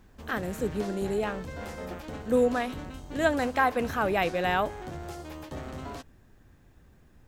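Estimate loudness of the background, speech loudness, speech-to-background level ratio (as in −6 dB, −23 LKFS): −40.0 LKFS, −28.5 LKFS, 11.5 dB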